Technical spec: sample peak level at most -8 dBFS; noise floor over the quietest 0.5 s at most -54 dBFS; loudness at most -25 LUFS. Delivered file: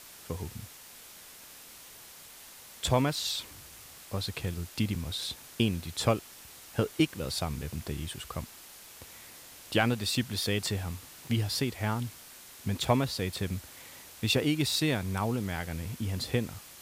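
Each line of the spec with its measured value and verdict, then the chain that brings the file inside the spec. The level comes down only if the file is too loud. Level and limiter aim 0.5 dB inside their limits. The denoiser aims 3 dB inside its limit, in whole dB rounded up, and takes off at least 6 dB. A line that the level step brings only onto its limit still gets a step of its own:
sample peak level -12.0 dBFS: OK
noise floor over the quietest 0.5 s -50 dBFS: fail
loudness -31.5 LUFS: OK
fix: denoiser 7 dB, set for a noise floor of -50 dBFS

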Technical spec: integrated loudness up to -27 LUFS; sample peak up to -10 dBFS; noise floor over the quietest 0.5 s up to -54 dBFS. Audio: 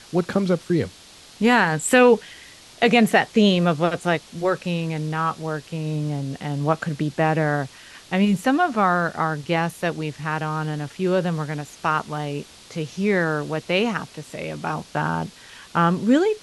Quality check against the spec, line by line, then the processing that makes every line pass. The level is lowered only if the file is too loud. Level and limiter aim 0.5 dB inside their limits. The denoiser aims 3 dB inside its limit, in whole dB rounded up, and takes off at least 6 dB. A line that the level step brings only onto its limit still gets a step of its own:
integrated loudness -22.0 LUFS: fail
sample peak -5.0 dBFS: fail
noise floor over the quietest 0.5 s -47 dBFS: fail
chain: denoiser 6 dB, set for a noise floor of -47 dBFS; gain -5.5 dB

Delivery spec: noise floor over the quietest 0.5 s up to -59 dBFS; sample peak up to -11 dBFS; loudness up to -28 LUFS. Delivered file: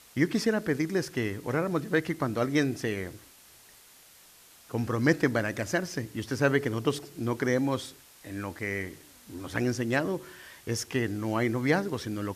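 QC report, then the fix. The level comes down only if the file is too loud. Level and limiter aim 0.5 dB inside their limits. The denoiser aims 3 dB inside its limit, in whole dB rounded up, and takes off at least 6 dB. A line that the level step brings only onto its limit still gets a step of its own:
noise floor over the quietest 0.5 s -55 dBFS: fail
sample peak -9.5 dBFS: fail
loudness -29.5 LUFS: OK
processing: denoiser 7 dB, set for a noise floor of -55 dBFS; limiter -11.5 dBFS

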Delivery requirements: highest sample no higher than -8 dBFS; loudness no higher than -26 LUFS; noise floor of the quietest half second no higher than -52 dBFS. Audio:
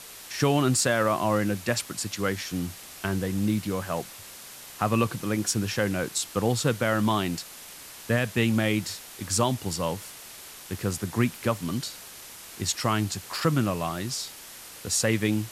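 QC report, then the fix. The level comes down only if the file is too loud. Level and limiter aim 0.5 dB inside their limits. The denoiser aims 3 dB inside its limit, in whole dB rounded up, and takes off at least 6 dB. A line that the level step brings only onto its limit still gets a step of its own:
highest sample -10.0 dBFS: OK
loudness -27.0 LUFS: OK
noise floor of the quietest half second -44 dBFS: fail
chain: denoiser 11 dB, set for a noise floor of -44 dBFS

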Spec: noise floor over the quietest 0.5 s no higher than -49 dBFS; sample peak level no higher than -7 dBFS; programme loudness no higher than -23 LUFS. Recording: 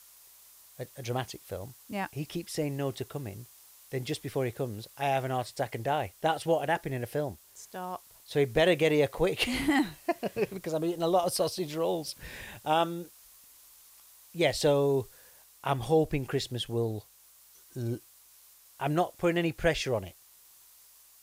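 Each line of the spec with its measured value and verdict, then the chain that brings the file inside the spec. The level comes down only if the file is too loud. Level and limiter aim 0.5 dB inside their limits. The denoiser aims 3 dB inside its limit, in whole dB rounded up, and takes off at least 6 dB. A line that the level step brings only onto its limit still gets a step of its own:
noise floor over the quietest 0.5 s -58 dBFS: OK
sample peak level -14.5 dBFS: OK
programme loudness -30.5 LUFS: OK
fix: none

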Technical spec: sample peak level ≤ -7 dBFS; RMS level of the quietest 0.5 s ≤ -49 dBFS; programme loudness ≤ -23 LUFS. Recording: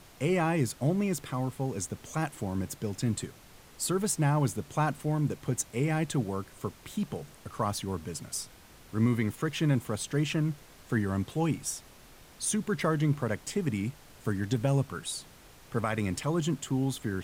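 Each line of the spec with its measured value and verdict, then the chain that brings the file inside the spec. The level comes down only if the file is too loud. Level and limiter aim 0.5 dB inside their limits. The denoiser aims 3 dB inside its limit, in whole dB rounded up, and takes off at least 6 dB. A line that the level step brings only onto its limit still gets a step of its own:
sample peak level -15.5 dBFS: OK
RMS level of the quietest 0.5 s -53 dBFS: OK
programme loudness -31.0 LUFS: OK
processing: none

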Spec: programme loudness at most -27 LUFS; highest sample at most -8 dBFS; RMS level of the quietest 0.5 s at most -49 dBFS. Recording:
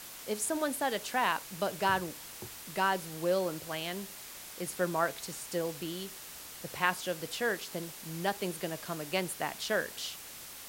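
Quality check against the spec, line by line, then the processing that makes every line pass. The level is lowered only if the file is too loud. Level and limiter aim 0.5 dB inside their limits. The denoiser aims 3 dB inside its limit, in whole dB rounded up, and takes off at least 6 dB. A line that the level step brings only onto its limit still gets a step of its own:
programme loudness -34.0 LUFS: OK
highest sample -11.0 dBFS: OK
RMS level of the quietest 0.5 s -47 dBFS: fail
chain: denoiser 6 dB, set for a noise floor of -47 dBFS

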